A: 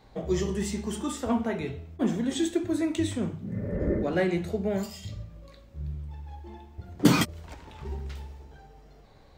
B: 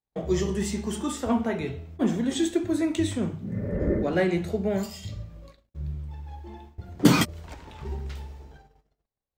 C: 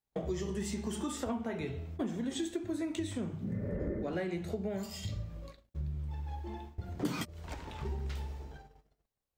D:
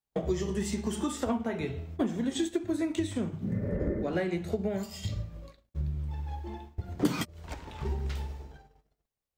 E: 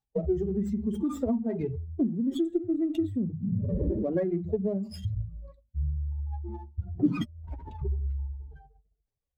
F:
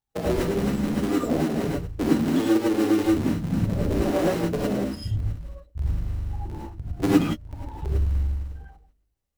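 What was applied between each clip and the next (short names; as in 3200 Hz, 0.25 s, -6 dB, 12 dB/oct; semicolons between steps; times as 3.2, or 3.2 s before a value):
gate -48 dBFS, range -41 dB; gain +2 dB
compressor 6:1, threshold -33 dBFS, peak gain reduction 20 dB
upward expander 1.5:1, over -49 dBFS; gain +8 dB
spectral contrast raised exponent 2.3; running maximum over 3 samples; gain +3 dB
cycle switcher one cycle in 3, muted; non-linear reverb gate 0.13 s rising, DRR -6 dB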